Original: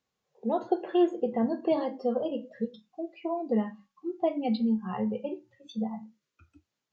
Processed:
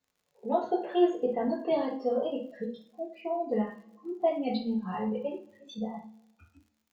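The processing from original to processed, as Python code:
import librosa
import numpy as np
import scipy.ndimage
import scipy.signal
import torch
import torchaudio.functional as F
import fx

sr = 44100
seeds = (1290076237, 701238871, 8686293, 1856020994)

y = fx.rev_double_slope(x, sr, seeds[0], early_s=0.3, late_s=1.5, knee_db=-28, drr_db=-5.5)
y = fx.dmg_crackle(y, sr, seeds[1], per_s=74.0, level_db=-50.0)
y = y * librosa.db_to_amplitude(-5.5)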